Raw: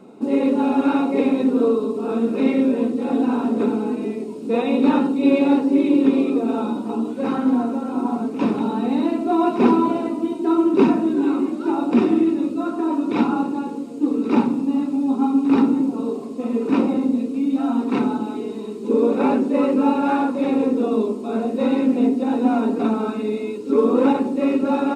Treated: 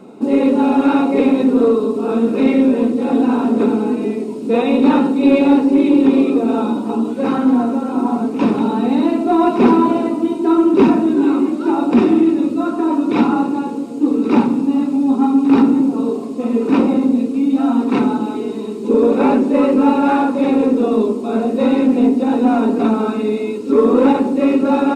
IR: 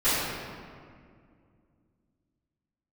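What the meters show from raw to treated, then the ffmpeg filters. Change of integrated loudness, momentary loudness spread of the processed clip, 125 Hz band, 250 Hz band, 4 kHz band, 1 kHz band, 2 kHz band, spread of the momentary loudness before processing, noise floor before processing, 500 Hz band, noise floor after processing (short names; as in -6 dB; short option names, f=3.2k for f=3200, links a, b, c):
+5.0 dB, 7 LU, +5.0 dB, +5.0 dB, n/a, +5.0 dB, +5.0 dB, 7 LU, -30 dBFS, +5.0 dB, -24 dBFS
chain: -filter_complex "[0:a]asoftclip=type=tanh:threshold=-7dB,asplit=2[a][b];[1:a]atrim=start_sample=2205,adelay=73[c];[b][c]afir=irnorm=-1:irlink=0,volume=-35.5dB[d];[a][d]amix=inputs=2:normalize=0,volume=5.5dB"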